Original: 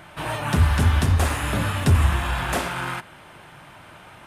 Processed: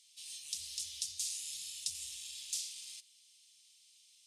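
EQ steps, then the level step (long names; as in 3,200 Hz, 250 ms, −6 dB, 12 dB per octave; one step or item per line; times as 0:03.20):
inverse Chebyshev high-pass filter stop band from 1,600 Hz, stop band 60 dB
high-frequency loss of the air 69 metres
high-shelf EQ 10,000 Hz −6.5 dB
+7.5 dB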